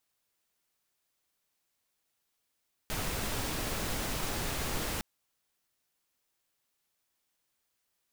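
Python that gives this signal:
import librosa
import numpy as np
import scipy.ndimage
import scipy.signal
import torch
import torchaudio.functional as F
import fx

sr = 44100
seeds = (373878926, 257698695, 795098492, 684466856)

y = fx.noise_colour(sr, seeds[0], length_s=2.11, colour='pink', level_db=-34.0)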